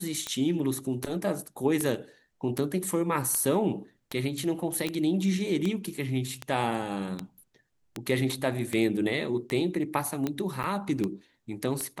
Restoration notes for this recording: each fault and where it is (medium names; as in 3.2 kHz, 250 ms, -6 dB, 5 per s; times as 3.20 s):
tick 78 rpm -16 dBFS
4.87 s: pop
10.63–10.64 s: dropout 8.5 ms